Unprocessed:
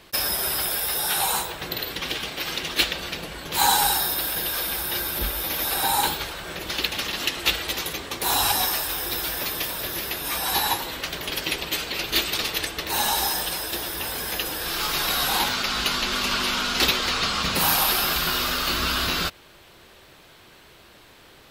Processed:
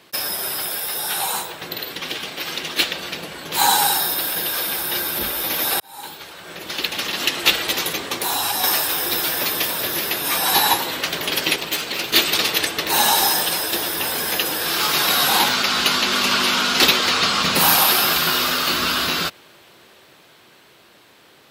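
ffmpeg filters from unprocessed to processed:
-filter_complex "[0:a]asettb=1/sr,asplit=3[a][b][c];[a]atrim=end=8.194[d];[b]atrim=start=8.19:end=8.64,asetpts=PTS-STARTPTS,afade=t=in:d=0.004:c=qsin,afade=t=out:st=0.446:d=0.004:c=qsin,acompressor=threshold=-26dB:ratio=3:attack=3.2:release=140:knee=1:detection=peak[e];[c]atrim=start=8.636[f];[d][e]acrossfade=d=0.004:c1=hsin:c2=qsin[g];[g][f]acrossfade=d=0.004:c1=qsin:c2=hsin,asettb=1/sr,asplit=3[h][i][j];[h]atrim=end=11.564[k];[i]atrim=start=11.56:end=12.14,asetpts=PTS-STARTPTS,afade=t=in:d=0.004:c=qsin,afade=t=out:st=0.576:d=0.004:c=qsin,aeval=exprs='(tanh(8.91*val(0)+0.65)-tanh(0.65))/8.91':c=same[l];[j]atrim=start=12.136[m];[k][l]acrossfade=d=0.004:c1=hsin:c2=qsin[n];[n][m]acrossfade=d=0.004:c1=qsin:c2=hsin,asplit=2[o][p];[o]atrim=end=5.8,asetpts=PTS-STARTPTS,afade=t=out:st=5.796:d=0.004:c=hsin[q];[p]atrim=start=5.8,asetpts=PTS-STARTPTS,afade=t=in:d=1.66[r];[q][r]concat=n=2:v=0:a=1,highpass=140,dynaudnorm=f=170:g=31:m=11.5dB"

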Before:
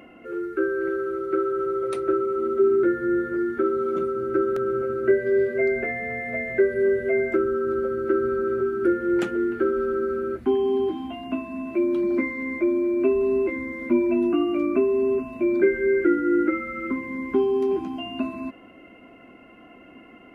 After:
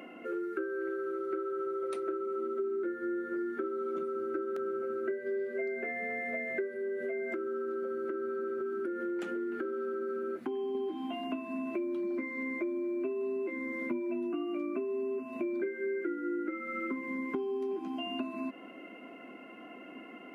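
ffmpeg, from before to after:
-filter_complex "[0:a]asettb=1/sr,asplit=3[a][b][c];[a]atrim=end=6.704[d];[b]atrim=start=6.7:end=10.75,asetpts=PTS-STARTPTS,afade=t=in:d=0.004:c=qsin,afade=t=out:st=4.046:d=0.004:c=qsin,acompressor=threshold=-26dB:ratio=3:attack=3.2:release=140:knee=1:detection=peak[e];[c]atrim=start=10.746[f];[d][e]acrossfade=d=0.004:c1=hsin:c2=qsin[g];[g][f]acrossfade=d=0.004:c1=qsin:c2=hsin,highpass=f=200:w=0.5412,highpass=f=200:w=1.3066,acompressor=threshold=-33dB:ratio=6"

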